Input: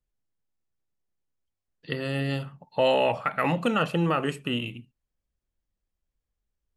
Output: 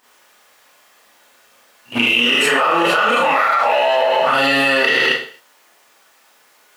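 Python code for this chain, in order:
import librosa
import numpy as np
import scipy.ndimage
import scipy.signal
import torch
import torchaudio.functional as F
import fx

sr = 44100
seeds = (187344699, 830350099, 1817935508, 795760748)

y = x[::-1].copy()
y = fx.high_shelf(y, sr, hz=2600.0, db=-10.5)
y = fx.leveller(y, sr, passes=1)
y = scipy.signal.sosfilt(scipy.signal.butter(2, 910.0, 'highpass', fs=sr, output='sos'), y)
y = fx.rev_schroeder(y, sr, rt60_s=0.47, comb_ms=26, drr_db=-8.0)
y = fx.env_flatten(y, sr, amount_pct=100)
y = y * librosa.db_to_amplitude(1.5)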